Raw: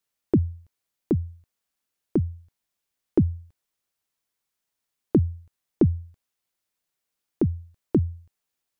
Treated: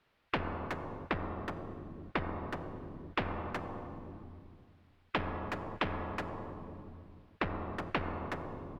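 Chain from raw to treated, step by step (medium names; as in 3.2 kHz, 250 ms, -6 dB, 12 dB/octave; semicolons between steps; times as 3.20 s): octave divider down 2 oct, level -6 dB; low-pass that closes with the level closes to 810 Hz, closed at -17.5 dBFS; in parallel at -2.5 dB: peak limiter -19 dBFS, peak gain reduction 10 dB; on the sum: wavefolder -13 dBFS; distance through air 400 m; speakerphone echo 370 ms, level -14 dB; plate-style reverb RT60 2.1 s, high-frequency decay 0.85×, DRR 12.5 dB; spectrum-flattening compressor 4:1; trim -4.5 dB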